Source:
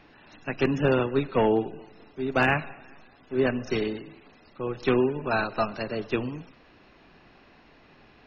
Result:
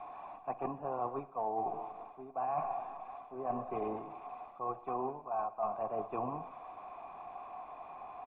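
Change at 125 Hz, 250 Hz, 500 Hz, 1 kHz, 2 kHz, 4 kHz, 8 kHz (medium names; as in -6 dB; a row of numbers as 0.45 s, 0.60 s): -19.5 dB, -17.5 dB, -12.5 dB, -3.0 dB, -27.5 dB, under -30 dB, no reading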